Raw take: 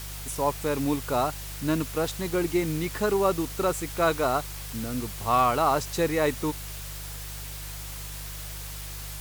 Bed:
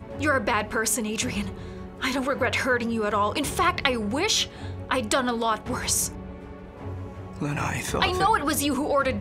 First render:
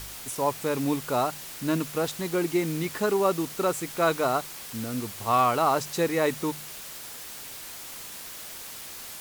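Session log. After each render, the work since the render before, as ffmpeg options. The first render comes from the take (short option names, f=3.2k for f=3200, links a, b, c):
-af "bandreject=f=50:t=h:w=4,bandreject=f=100:t=h:w=4,bandreject=f=150:t=h:w=4"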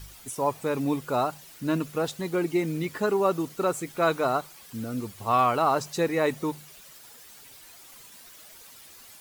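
-af "afftdn=nr=11:nf=-41"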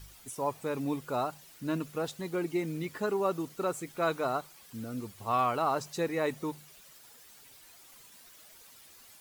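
-af "volume=-6dB"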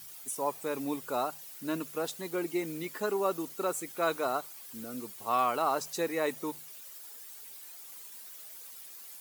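-af "highpass=240,highshelf=f=8.1k:g=11"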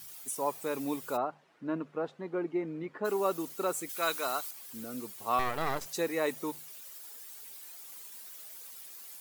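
-filter_complex "[0:a]asplit=3[a][b][c];[a]afade=t=out:st=1.16:d=0.02[d];[b]lowpass=1.5k,afade=t=in:st=1.16:d=0.02,afade=t=out:st=3.04:d=0.02[e];[c]afade=t=in:st=3.04:d=0.02[f];[d][e][f]amix=inputs=3:normalize=0,asettb=1/sr,asplit=3[g][h][i];[g]atrim=end=3.894[j];[h]atrim=start=3.89:end=4.51,asetpts=PTS-STARTPTS,afade=t=in:d=0.004:c=qsin,afade=t=out:st=0.616:d=0.004:c=qsin,tiltshelf=f=1.3k:g=-7[k];[i]atrim=start=4.506[l];[j][k]acrossfade=d=0.004:c1=hsin:c2=qsin[m];[m][l]acrossfade=d=0.004:c1=qsin:c2=hsin,asettb=1/sr,asplit=3[n][o][p];[n]atrim=end=5.394[q];[o]atrim=start=5.39:end=5.86,asetpts=PTS-STARTPTS,afade=t=in:d=0.004:c=qsin,afade=t=out:st=0.466:d=0.004:c=qsin,aeval=exprs='max(val(0),0)':c=same[r];[p]atrim=start=5.856[s];[q][r]acrossfade=d=0.004:c1=hsin:c2=qsin[t];[t][s]acrossfade=d=0.004:c1=qsin:c2=hsin"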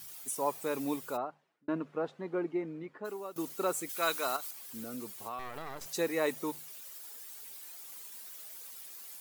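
-filter_complex "[0:a]asettb=1/sr,asplit=3[a][b][c];[a]atrim=end=4.364[d];[b]atrim=start=4.36:end=5.92,asetpts=PTS-STARTPTS,afade=t=in:d=0.004:c=qsin,afade=t=out:st=1.556:d=0.004:c=qsin,acompressor=threshold=-36dB:ratio=6:attack=3.2:release=140:knee=1:detection=peak[e];[c]atrim=start=5.916[f];[d][e]acrossfade=d=0.004:c1=hsin:c2=qsin[g];[g][f]acrossfade=d=0.004:c1=qsin:c2=hsin,asplit=3[h][i][j];[h]atrim=end=1.68,asetpts=PTS-STARTPTS,afade=t=out:st=0.92:d=0.76[k];[i]atrim=start=1.68:end=3.36,asetpts=PTS-STARTPTS,afade=t=in:d=0.004:c=hsin,afade=t=out:st=0.71:d=0.97:silence=0.133352[l];[j]atrim=start=3.36,asetpts=PTS-STARTPTS,afade=t=in:d=0.004:c=hsin:silence=0.133352[m];[k][l][m]concat=n=3:v=0:a=1"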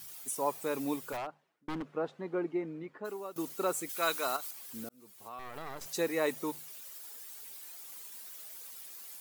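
-filter_complex "[0:a]asettb=1/sr,asplit=3[a][b][c];[a]atrim=end=1.124[d];[b]atrim=start=1.12:end=1.93,asetpts=PTS-STARTPTS,afade=t=in:d=0.004:c=qsin,afade=t=out:st=0.806:d=0.004:c=qsin,aeval=exprs='0.0251*(abs(mod(val(0)/0.0251+3,4)-2)-1)':c=same[e];[c]atrim=start=1.926[f];[d][e]acrossfade=d=0.004:c1=hsin:c2=qsin[g];[g][f]acrossfade=d=0.004:c1=qsin:c2=hsin,asplit=2[h][i];[h]atrim=end=4.89,asetpts=PTS-STARTPTS,afade=t=out:st=4.886:d=0.004:c=hsin[j];[i]atrim=start=4.89,asetpts=PTS-STARTPTS,afade=t=in:d=0.77[k];[j][k]concat=n=2:v=0:a=1"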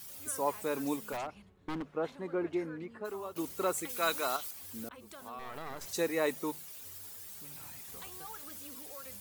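-filter_complex "[1:a]volume=-28dB[a];[0:a][a]amix=inputs=2:normalize=0"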